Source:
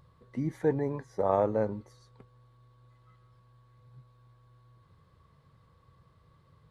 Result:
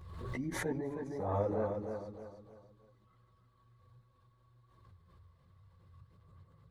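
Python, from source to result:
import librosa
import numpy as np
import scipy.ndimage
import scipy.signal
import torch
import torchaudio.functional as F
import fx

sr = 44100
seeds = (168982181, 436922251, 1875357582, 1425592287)

y = fx.peak_eq(x, sr, hz=95.0, db=14.5, octaves=0.35)
y = fx.chorus_voices(y, sr, voices=6, hz=1.3, base_ms=14, depth_ms=3.0, mix_pct=65)
y = fx.echo_feedback(y, sr, ms=311, feedback_pct=37, wet_db=-6)
y = fx.pre_swell(y, sr, db_per_s=40.0)
y = y * 10.0 ** (-6.0 / 20.0)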